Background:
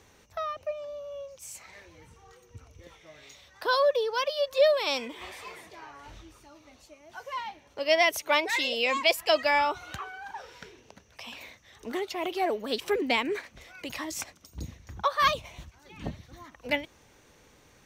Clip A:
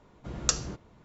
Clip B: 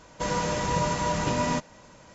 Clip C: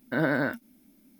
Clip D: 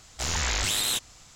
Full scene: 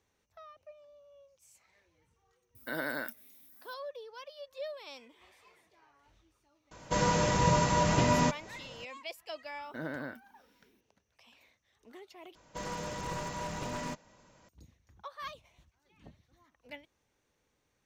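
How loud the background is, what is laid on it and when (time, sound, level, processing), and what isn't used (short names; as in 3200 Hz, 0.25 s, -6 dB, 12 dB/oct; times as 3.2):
background -19 dB
2.55 add C -8.5 dB + RIAA curve recording
6.71 add B -0.5 dB + bell 120 Hz +3.5 dB
9.62 add C -13.5 dB
12.35 replace with B -10.5 dB + one-sided fold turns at -23.5 dBFS
not used: A, D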